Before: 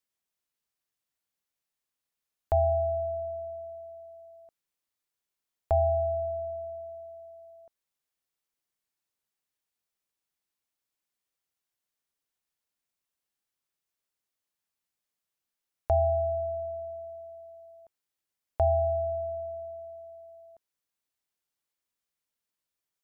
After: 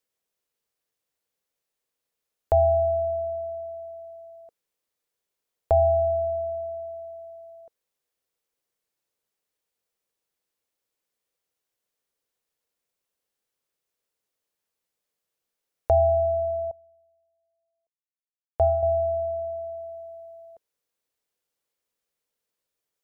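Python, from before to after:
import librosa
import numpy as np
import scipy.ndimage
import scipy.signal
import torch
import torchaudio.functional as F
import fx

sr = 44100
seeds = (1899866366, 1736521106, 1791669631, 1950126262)

y = fx.peak_eq(x, sr, hz=480.0, db=9.5, octaves=0.64)
y = fx.upward_expand(y, sr, threshold_db=-42.0, expansion=2.5, at=(16.71, 18.83))
y = y * 10.0 ** (2.5 / 20.0)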